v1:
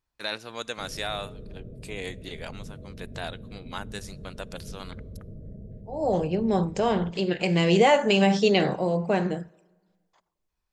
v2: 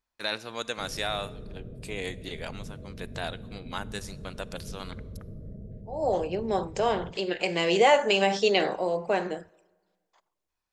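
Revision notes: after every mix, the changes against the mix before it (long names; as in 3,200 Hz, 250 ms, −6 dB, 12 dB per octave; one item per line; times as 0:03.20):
first voice: send +9.0 dB
second voice: add high-pass filter 370 Hz 12 dB per octave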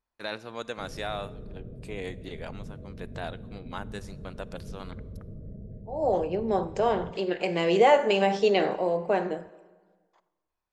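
second voice: send +11.5 dB
master: add high-shelf EQ 2,200 Hz −10.5 dB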